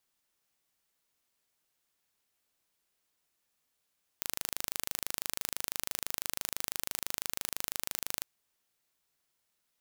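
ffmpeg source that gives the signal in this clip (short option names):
-f lavfi -i "aevalsrc='0.501*eq(mod(n,1696),0)':d=4:s=44100"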